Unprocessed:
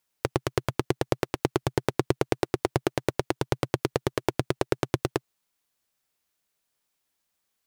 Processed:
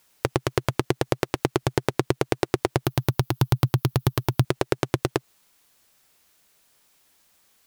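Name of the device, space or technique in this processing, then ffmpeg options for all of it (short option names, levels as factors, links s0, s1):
loud club master: -filter_complex "[0:a]asettb=1/sr,asplit=3[s0][s1][s2];[s0]atrim=end=2.854[s3];[s1]atrim=start=2.85:end=4.45,asetpts=PTS-STARTPTS,afade=t=in:d=0.004:c=qsin,afade=t=out:st=1.596:d=0.004:c=qsin,equalizer=f=125:t=o:w=1:g=7,equalizer=f=250:t=o:w=1:g=-3,equalizer=f=500:t=o:w=1:g=-12,equalizer=f=2000:t=o:w=1:g=-8,equalizer=f=8000:t=o:w=1:g=-10,equalizer=f=16000:t=o:w=1:g=10[s4];[s2]atrim=start=4.446[s5];[s3][s4]acrossfade=d=0.004:c1=hsin:c2=qsin[s6];[s6][s5]acrossfade=d=0.004:c1=qsin:c2=hsin,acompressor=threshold=0.0501:ratio=2.5,asoftclip=type=hard:threshold=0.335,alimiter=level_in=7.94:limit=0.891:release=50:level=0:latency=1,volume=0.794"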